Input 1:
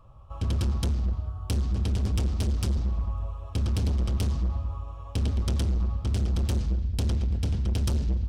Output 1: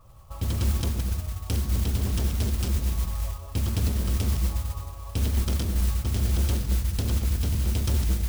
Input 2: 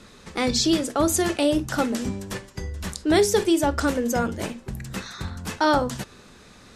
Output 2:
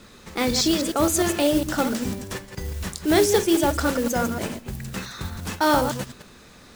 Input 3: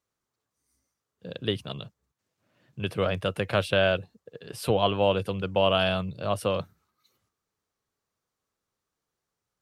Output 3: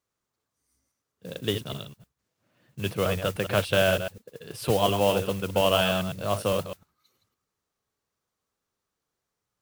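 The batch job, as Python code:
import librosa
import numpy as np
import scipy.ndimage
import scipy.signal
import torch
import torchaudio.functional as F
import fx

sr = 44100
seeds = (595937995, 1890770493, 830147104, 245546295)

y = fx.reverse_delay(x, sr, ms=102, wet_db=-7.5)
y = fx.mod_noise(y, sr, seeds[0], snr_db=16)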